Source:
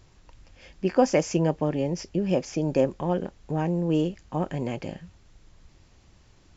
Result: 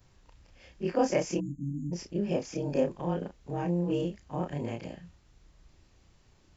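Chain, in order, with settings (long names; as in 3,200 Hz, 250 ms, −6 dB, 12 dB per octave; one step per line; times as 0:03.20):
every overlapping window played backwards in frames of 69 ms
time-frequency box erased 0:01.40–0:01.92, 320–6,300 Hz
level −2 dB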